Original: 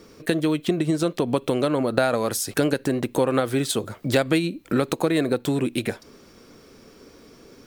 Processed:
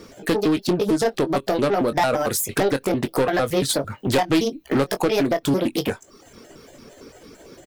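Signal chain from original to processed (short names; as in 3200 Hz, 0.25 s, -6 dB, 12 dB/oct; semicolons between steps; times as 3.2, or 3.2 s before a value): trilling pitch shifter +5 st, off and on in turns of 0.113 s; reverb removal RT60 0.61 s; soft clip -19 dBFS, distortion -12 dB; doubler 22 ms -11 dB; Doppler distortion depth 0.27 ms; gain +5.5 dB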